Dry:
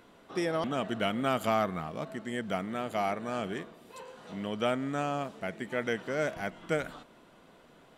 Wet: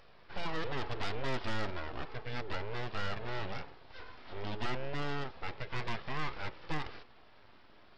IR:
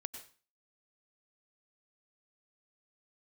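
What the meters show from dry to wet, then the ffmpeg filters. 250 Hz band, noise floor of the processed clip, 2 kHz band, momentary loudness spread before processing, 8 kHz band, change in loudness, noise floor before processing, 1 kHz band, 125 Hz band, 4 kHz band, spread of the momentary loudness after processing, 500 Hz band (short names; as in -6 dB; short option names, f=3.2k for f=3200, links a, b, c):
-10.5 dB, -58 dBFS, -3.5 dB, 11 LU, -10.0 dB, -7.0 dB, -58 dBFS, -7.0 dB, -1.0 dB, -2.0 dB, 10 LU, -10.0 dB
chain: -af "aresample=11025,aeval=exprs='abs(val(0))':c=same,aresample=44100,flanger=delay=1.6:depth=1.7:regen=-62:speed=0.33:shape=triangular,asoftclip=type=tanh:threshold=-29.5dB,volume=4.5dB"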